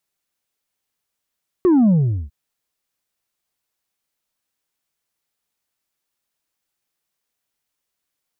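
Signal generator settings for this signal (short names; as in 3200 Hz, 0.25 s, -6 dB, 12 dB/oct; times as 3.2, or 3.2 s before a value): sub drop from 380 Hz, over 0.65 s, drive 3 dB, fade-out 0.41 s, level -11 dB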